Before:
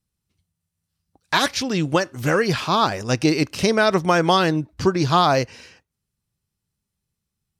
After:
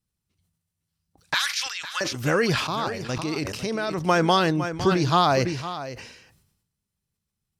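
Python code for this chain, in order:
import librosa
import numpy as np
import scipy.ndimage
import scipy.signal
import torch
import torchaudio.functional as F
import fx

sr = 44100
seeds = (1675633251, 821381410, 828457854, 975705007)

y = fx.highpass(x, sr, hz=1300.0, slope=24, at=(1.34, 2.01))
y = fx.level_steps(y, sr, step_db=12, at=(2.67, 4.03))
y = y + 10.0 ** (-13.0 / 20.0) * np.pad(y, (int(508 * sr / 1000.0), 0))[:len(y)]
y = fx.sustainer(y, sr, db_per_s=59.0)
y = y * 10.0 ** (-3.0 / 20.0)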